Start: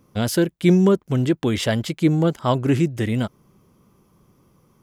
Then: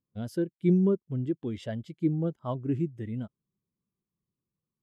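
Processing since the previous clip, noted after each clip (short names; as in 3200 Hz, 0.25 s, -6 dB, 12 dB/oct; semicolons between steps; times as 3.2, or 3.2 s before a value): spectral expander 1.5:1; gain -8 dB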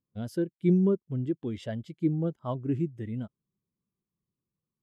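nothing audible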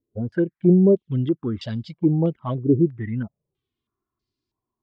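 in parallel at -3 dB: limiter -22 dBFS, peak gain reduction 8 dB; on the sum: envelope flanger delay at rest 2.9 ms, full sweep at -20.5 dBFS; stepped low-pass 3.1 Hz 480–4600 Hz; gain +4 dB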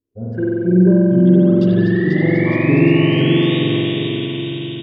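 painted sound rise, 1.77–3.59, 1700–3800 Hz -32 dBFS; on a send: bouncing-ball echo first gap 0.49 s, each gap 0.85×, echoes 5; on the sum: spring tank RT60 3.7 s, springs 44 ms, chirp 55 ms, DRR -8 dB; gain -3.5 dB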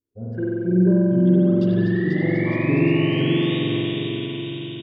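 resonator 110 Hz, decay 1.4 s, harmonics odd, mix 50%; echo 0.105 s -16 dB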